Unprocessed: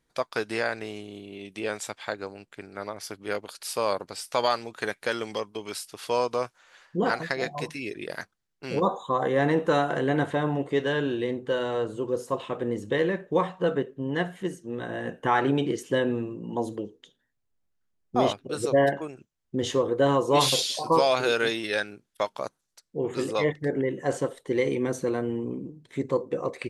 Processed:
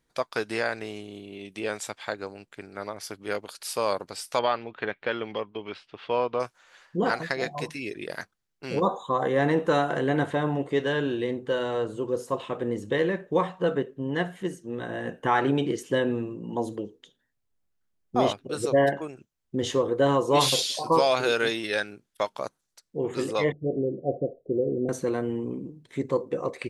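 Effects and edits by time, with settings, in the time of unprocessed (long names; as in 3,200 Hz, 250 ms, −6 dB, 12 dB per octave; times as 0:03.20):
0:04.39–0:06.40: Chebyshev low-pass filter 3,100 Hz, order 3
0:23.52–0:24.89: Chebyshev low-pass filter 720 Hz, order 8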